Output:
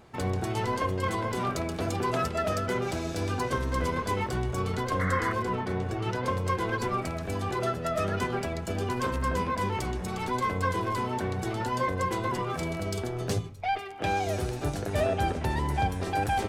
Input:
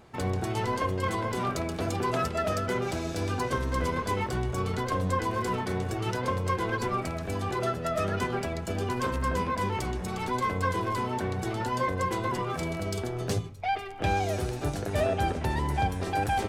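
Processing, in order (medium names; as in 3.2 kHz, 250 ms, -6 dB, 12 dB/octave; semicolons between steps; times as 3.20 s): 4.99–5.33 s: painted sound noise 970–2200 Hz -33 dBFS; 5.42–6.24 s: treble shelf 3.8 kHz -> 7.7 kHz -11.5 dB; 13.78–14.27 s: high-pass 160 Hz 6 dB/octave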